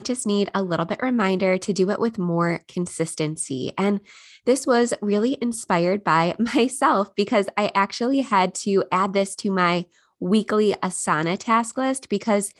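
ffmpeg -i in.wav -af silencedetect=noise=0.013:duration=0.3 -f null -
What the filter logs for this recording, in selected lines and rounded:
silence_start: 9.83
silence_end: 10.21 | silence_duration: 0.39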